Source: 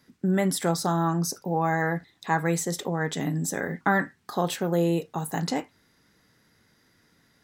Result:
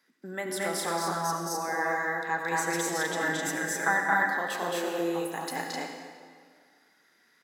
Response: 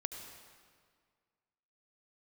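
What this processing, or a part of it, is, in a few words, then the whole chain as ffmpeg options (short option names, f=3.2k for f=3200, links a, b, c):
stadium PA: -filter_complex "[0:a]highpass=f=420:p=1,asettb=1/sr,asplit=3[a][b][c];[a]atrim=end=2.514[d];[b]atrim=start=2.51:end=3.97,asetpts=PTS-STARTPTS,afade=t=in:d=0.004:c=qsin,afade=t=out:st=1.456:d=0.004:c=qsin,aecho=1:1:6.2:0.91,atrim=end_sample=64386[e];[c]atrim=start=3.966[f];[d][e]acrossfade=d=0.004:c1=hsin:c2=qsin[g];[g][f]acrossfade=d=0.004:c1=qsin:c2=hsin,highpass=220,equalizer=f=1.8k:t=o:w=1.1:g=5,aecho=1:1:221.6|256.6:0.891|0.891[h];[1:a]atrim=start_sample=2205[i];[h][i]afir=irnorm=-1:irlink=0,volume=-5.5dB"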